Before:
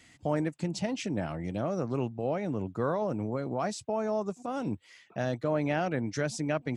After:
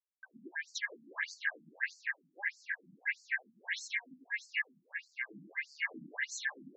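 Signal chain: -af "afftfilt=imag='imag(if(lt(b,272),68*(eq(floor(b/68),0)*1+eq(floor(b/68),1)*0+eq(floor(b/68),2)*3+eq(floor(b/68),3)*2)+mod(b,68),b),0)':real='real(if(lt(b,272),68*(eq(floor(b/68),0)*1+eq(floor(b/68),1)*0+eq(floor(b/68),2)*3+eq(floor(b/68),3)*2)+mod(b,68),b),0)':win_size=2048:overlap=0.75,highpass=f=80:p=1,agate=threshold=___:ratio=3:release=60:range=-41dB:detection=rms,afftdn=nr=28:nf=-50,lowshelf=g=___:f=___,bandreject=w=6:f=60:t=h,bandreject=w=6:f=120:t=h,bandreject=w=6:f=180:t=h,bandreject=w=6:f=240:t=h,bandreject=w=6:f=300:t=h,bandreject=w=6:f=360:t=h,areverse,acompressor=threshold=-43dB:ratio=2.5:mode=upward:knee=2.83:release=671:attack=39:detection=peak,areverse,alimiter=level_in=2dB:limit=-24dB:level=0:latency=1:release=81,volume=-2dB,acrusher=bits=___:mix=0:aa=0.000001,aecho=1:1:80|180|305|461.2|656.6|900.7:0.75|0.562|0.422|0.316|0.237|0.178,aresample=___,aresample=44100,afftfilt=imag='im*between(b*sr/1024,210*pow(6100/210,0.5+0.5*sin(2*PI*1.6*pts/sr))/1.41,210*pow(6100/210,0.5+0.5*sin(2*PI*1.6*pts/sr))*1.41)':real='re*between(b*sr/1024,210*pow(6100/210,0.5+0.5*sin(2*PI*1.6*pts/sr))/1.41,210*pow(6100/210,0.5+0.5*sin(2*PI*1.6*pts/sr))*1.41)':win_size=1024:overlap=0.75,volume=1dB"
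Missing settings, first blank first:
-53dB, 6, 400, 8, 16000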